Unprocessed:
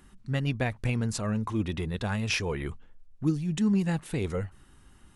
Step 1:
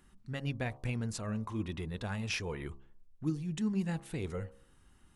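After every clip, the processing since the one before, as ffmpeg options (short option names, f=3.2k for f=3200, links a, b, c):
-af "bandreject=f=67.68:t=h:w=4,bandreject=f=135.36:t=h:w=4,bandreject=f=203.04:t=h:w=4,bandreject=f=270.72:t=h:w=4,bandreject=f=338.4:t=h:w=4,bandreject=f=406.08:t=h:w=4,bandreject=f=473.76:t=h:w=4,bandreject=f=541.44:t=h:w=4,bandreject=f=609.12:t=h:w=4,bandreject=f=676.8:t=h:w=4,bandreject=f=744.48:t=h:w=4,bandreject=f=812.16:t=h:w=4,bandreject=f=879.84:t=h:w=4,bandreject=f=947.52:t=h:w=4,bandreject=f=1.0152k:t=h:w=4,bandreject=f=1.08288k:t=h:w=4,bandreject=f=1.15056k:t=h:w=4,bandreject=f=1.21824k:t=h:w=4,volume=-7dB"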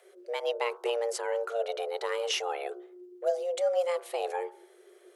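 -af "afreqshift=350,volume=5dB"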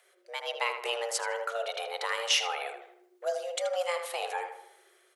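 -filter_complex "[0:a]highpass=1k,dynaudnorm=f=140:g=7:m=5.5dB,asplit=2[a][b];[b]adelay=79,lowpass=f=2.7k:p=1,volume=-6.5dB,asplit=2[c][d];[d]adelay=79,lowpass=f=2.7k:p=1,volume=0.47,asplit=2[e][f];[f]adelay=79,lowpass=f=2.7k:p=1,volume=0.47,asplit=2[g][h];[h]adelay=79,lowpass=f=2.7k:p=1,volume=0.47,asplit=2[i][j];[j]adelay=79,lowpass=f=2.7k:p=1,volume=0.47,asplit=2[k][l];[l]adelay=79,lowpass=f=2.7k:p=1,volume=0.47[m];[c][e][g][i][k][m]amix=inputs=6:normalize=0[n];[a][n]amix=inputs=2:normalize=0"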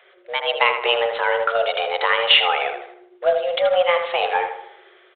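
-af "acontrast=20,acrusher=bits=4:mode=log:mix=0:aa=0.000001,aresample=8000,aresample=44100,volume=8.5dB"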